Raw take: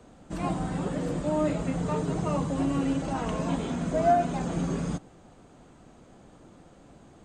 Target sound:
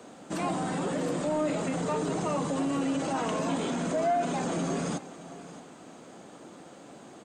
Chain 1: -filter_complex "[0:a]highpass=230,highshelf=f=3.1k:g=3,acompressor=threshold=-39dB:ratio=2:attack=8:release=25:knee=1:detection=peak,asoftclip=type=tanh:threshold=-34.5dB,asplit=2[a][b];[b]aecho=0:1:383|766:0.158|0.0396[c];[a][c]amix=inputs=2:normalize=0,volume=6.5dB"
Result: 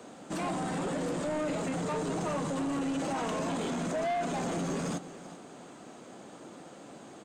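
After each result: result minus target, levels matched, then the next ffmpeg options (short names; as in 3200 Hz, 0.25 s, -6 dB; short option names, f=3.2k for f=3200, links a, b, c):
soft clip: distortion +13 dB; echo 0.238 s early
-filter_complex "[0:a]highpass=230,highshelf=f=3.1k:g=3,acompressor=threshold=-39dB:ratio=2:attack=8:release=25:knee=1:detection=peak,asoftclip=type=tanh:threshold=-24.5dB,asplit=2[a][b];[b]aecho=0:1:383|766:0.158|0.0396[c];[a][c]amix=inputs=2:normalize=0,volume=6.5dB"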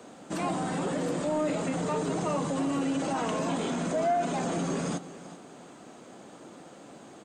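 echo 0.238 s early
-filter_complex "[0:a]highpass=230,highshelf=f=3.1k:g=3,acompressor=threshold=-39dB:ratio=2:attack=8:release=25:knee=1:detection=peak,asoftclip=type=tanh:threshold=-24.5dB,asplit=2[a][b];[b]aecho=0:1:621|1242:0.158|0.0396[c];[a][c]amix=inputs=2:normalize=0,volume=6.5dB"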